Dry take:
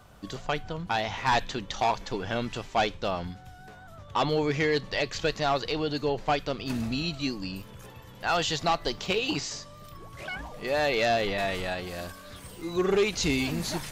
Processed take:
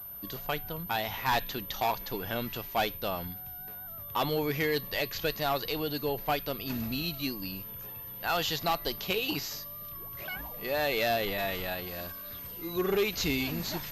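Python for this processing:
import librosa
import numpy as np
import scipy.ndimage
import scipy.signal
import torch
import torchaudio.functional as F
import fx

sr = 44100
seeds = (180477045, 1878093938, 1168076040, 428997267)

y = fx.high_shelf(x, sr, hz=4000.0, db=6.5)
y = fx.pwm(y, sr, carrier_hz=13000.0)
y = y * 10.0 ** (-4.0 / 20.0)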